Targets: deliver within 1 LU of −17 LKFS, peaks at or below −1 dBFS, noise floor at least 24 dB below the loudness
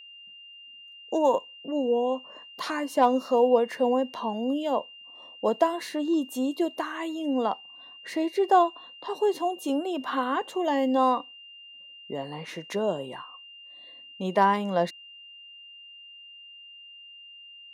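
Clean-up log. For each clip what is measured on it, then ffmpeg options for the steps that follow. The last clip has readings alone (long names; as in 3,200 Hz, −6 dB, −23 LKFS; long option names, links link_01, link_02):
interfering tone 2,800 Hz; level of the tone −45 dBFS; integrated loudness −27.0 LKFS; sample peak −9.0 dBFS; target loudness −17.0 LKFS
→ -af "bandreject=frequency=2800:width=30"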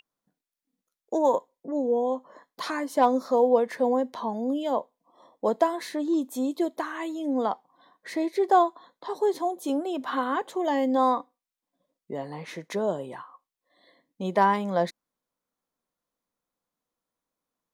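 interfering tone none found; integrated loudness −26.5 LKFS; sample peak −9.0 dBFS; target loudness −17.0 LKFS
→ -af "volume=9.5dB,alimiter=limit=-1dB:level=0:latency=1"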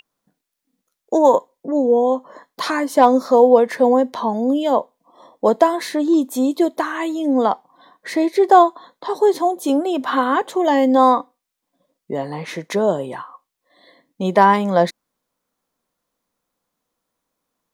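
integrated loudness −17.5 LKFS; sample peak −1.0 dBFS; background noise floor −80 dBFS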